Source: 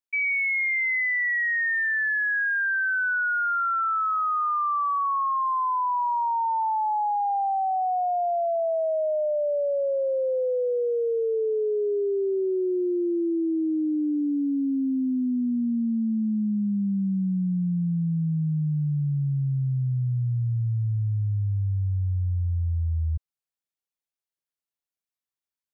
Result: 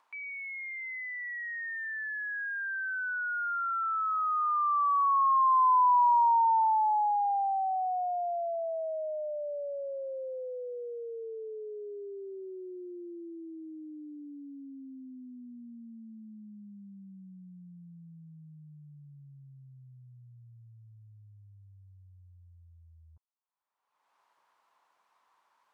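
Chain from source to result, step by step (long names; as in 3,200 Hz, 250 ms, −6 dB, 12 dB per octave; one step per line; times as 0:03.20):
upward compression, threshold −29 dBFS
resonant band-pass 990 Hz, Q 4.2
level +2.5 dB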